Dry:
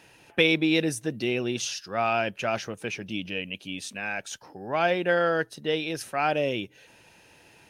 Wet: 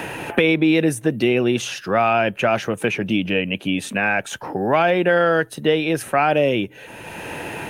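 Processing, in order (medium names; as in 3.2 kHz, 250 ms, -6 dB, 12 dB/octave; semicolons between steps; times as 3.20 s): peaking EQ 5.1 kHz -12 dB 1 oct; loudness maximiser +15 dB; three bands compressed up and down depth 70%; trim -5.5 dB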